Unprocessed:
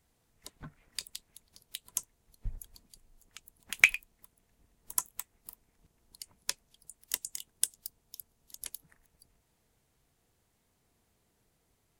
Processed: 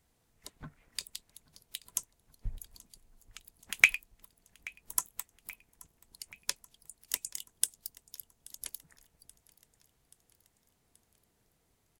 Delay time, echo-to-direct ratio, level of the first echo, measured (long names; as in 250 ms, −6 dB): 830 ms, −21.0 dB, −23.0 dB